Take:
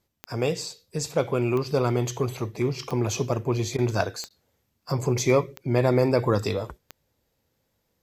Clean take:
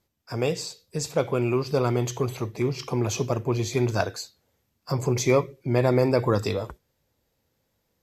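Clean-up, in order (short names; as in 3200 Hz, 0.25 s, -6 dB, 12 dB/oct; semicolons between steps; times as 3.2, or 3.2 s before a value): de-click; interpolate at 3.77/4.29, 13 ms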